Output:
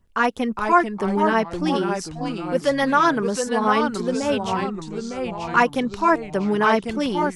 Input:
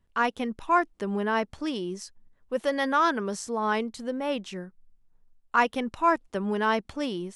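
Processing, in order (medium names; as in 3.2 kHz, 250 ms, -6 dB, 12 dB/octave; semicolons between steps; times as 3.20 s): LFO notch sine 8.2 Hz 630–4000 Hz; 4.22–4.64 s: band noise 77–130 Hz -49 dBFS; ever faster or slower copies 391 ms, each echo -2 st, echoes 3, each echo -6 dB; trim +7 dB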